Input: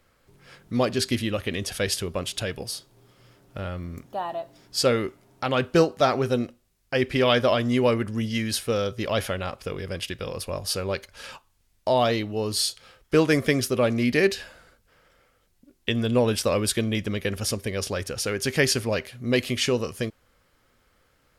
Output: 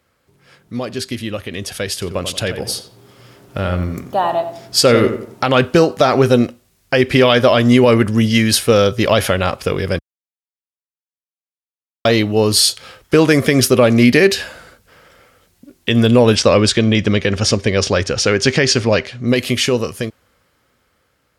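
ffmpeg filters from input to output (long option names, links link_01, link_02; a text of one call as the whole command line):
ffmpeg -i in.wav -filter_complex "[0:a]asettb=1/sr,asplit=3[link_01][link_02][link_03];[link_01]atrim=end=1.934[link_04];[link_02]atrim=start=1.93:end=5.52,asetpts=PTS-STARTPTS,afade=type=in:duration=0.004:curve=qsin,afade=type=out:start_time=3.586:duration=0.004:curve=qsin,asplit=2[link_05][link_06];[link_06]adelay=89,lowpass=frequency=2000:poles=1,volume=-9dB,asplit=2[link_07][link_08];[link_08]adelay=89,lowpass=frequency=2000:poles=1,volume=0.39,asplit=2[link_09][link_10];[link_10]adelay=89,lowpass=frequency=2000:poles=1,volume=0.39,asplit=2[link_11][link_12];[link_12]adelay=89,lowpass=frequency=2000:poles=1,volume=0.39[link_13];[link_05][link_07][link_09][link_11][link_13]amix=inputs=5:normalize=0,atrim=end_sample=158319[link_14];[link_03]atrim=start=5.516[link_15];[link_04][link_14]acrossfade=duration=0.004:curve1=hsin:curve2=qsin[link_16];[link_16][link_15]acrossfade=duration=0.004:curve1=qsin:curve2=hsin,asettb=1/sr,asplit=3[link_17][link_18][link_19];[link_17]atrim=end=16.354[link_20];[link_18]atrim=start=16.35:end=19.28,asetpts=PTS-STARTPTS,afade=type=in:duration=0.004:curve=qsin,afade=type=out:start_time=2.926:duration=0.004:curve=qsin,lowpass=frequency=6900:width=0.5412,lowpass=frequency=6900:width=1.3066[link_21];[link_19]atrim=start=19.276[link_22];[link_20][link_21]acrossfade=duration=0.004:curve1=hsin:curve2=qsin[link_23];[link_23][link_22]acrossfade=duration=0.004:curve1=qsin:curve2=hsin,asplit=3[link_24][link_25][link_26];[link_24]atrim=end=9.99,asetpts=PTS-STARTPTS,afade=type=out:start_time=9.986:duration=0.004:curve=hsin[link_27];[link_25]atrim=start=9.99:end=12.05,asetpts=PTS-STARTPTS,volume=0[link_28];[link_26]atrim=start=12.05,asetpts=PTS-STARTPTS,afade=type=in:duration=0.004:curve=hsin[link_29];[link_27][link_28][link_29]concat=n=3:v=0:a=1,highpass=63,alimiter=limit=-15dB:level=0:latency=1:release=95,dynaudnorm=framelen=570:gausssize=9:maxgain=14.5dB,volume=1dB" out.wav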